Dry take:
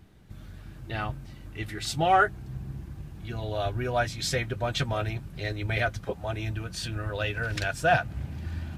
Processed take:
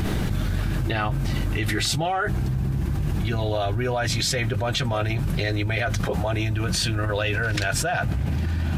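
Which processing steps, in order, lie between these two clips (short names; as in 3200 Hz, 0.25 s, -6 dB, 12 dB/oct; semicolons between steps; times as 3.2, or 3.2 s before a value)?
fast leveller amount 100%; gain -6 dB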